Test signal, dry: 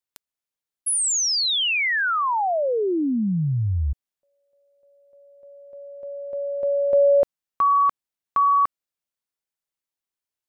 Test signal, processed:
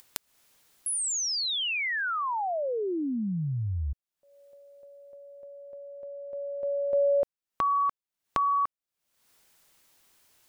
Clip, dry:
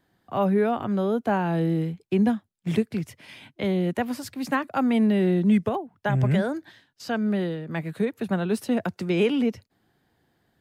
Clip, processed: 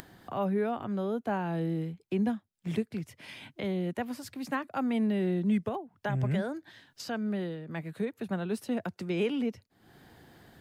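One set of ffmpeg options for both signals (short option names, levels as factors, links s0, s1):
-af "acompressor=mode=upward:threshold=0.0251:ratio=2.5:attack=40:release=300:knee=2.83:detection=peak,volume=0.422"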